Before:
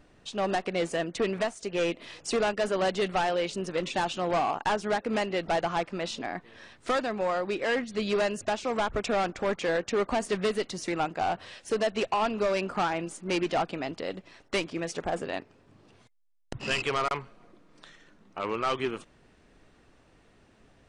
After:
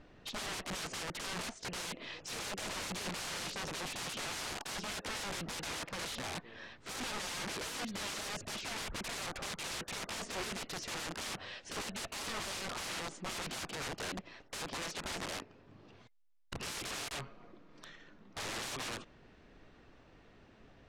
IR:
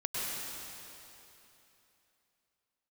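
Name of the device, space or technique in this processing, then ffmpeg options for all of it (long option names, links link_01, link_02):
overflowing digital effects unit: -af "lowpass=5400,aeval=exprs='(mod(50.1*val(0)+1,2)-1)/50.1':channel_layout=same,lowpass=8300"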